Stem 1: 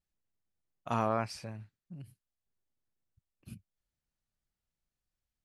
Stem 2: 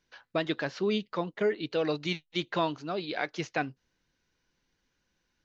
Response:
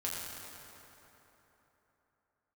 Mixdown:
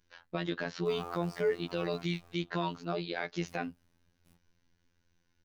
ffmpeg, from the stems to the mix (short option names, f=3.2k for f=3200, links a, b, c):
-filter_complex "[0:a]acrusher=bits=7:mix=0:aa=0.000001,volume=-9dB,asplit=3[a][b][c];[b]volume=-8.5dB[d];[c]volume=-6dB[e];[1:a]lowshelf=f=130:g=12,volume=1dB[f];[2:a]atrim=start_sample=2205[g];[d][g]afir=irnorm=-1:irlink=0[h];[e]aecho=0:1:789:1[i];[a][f][h][i]amix=inputs=4:normalize=0,afftfilt=real='hypot(re,im)*cos(PI*b)':imag='0':win_size=2048:overlap=0.75,alimiter=limit=-18.5dB:level=0:latency=1:release=34"